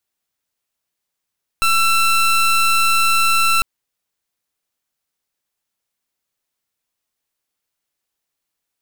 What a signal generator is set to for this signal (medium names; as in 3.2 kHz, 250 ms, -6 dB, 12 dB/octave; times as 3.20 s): pulse 1.34 kHz, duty 22% -14.5 dBFS 2.00 s